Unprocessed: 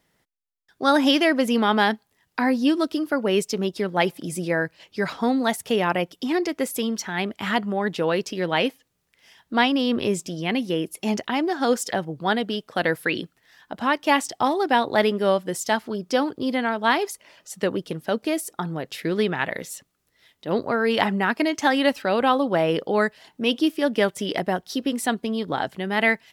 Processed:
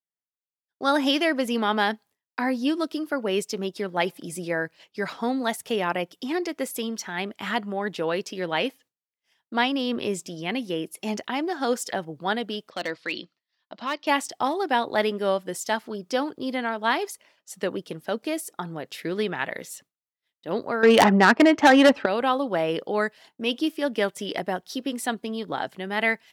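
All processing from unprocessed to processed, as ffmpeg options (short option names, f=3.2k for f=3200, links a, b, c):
-filter_complex "[0:a]asettb=1/sr,asplit=3[a][b][c];[a]atrim=end=12.704[d];[b]atrim=start=12.7:end=14.07,asetpts=PTS-STARTPTS,afade=t=in:d=0.004:c=qsin,afade=t=out:st=1.366:d=0.004:c=qsin,highpass=160,equalizer=f=160:t=q:w=4:g=-5,equalizer=f=260:t=q:w=4:g=-5,equalizer=f=430:t=q:w=4:g=-9,equalizer=f=810:t=q:w=4:g=-7,equalizer=f=1.6k:t=q:w=4:g=-8,equalizer=f=4.4k:t=q:w=4:g=7,lowpass=f=5.5k:w=0.5412,lowpass=f=5.5k:w=1.3066,volume=17dB,asoftclip=hard,volume=-17dB[e];[c]atrim=start=14.066[f];[d][e]acrossfade=d=0.004:c1=hsin:c2=qsin[g];[g][f]acrossfade=d=0.004:c1=qsin:c2=hsin,asettb=1/sr,asplit=3[h][i][j];[h]atrim=end=20.834[k];[i]atrim=start=20.83:end=22.06,asetpts=PTS-STARTPTS,afade=t=in:d=0.004:c=qsin,afade=t=out:st=1.226:d=0.004:c=qsin,adynamicsmooth=sensitivity=1:basefreq=1.7k,aeval=exprs='0.596*sin(PI/2*2.51*val(0)/0.596)':c=same[l];[j]atrim=start=22.056[m];[k][l]acrossfade=d=0.004:c1=hsin:c2=qsin[n];[n][m]acrossfade=d=0.004:c1=qsin:c2=hsin,highpass=f=190:p=1,agate=range=-33dB:threshold=-43dB:ratio=3:detection=peak,volume=-3dB"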